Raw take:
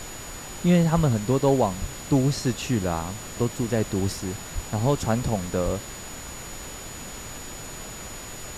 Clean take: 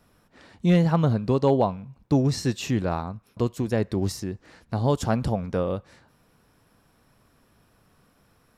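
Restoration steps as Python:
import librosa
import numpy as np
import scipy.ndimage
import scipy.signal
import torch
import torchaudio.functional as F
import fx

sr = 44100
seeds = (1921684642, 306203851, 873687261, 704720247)

y = fx.notch(x, sr, hz=6900.0, q=30.0)
y = fx.fix_deplosive(y, sr, at_s=(0.95, 1.8, 4.54, 5.64))
y = fx.noise_reduce(y, sr, print_start_s=6.75, print_end_s=7.25, reduce_db=25.0)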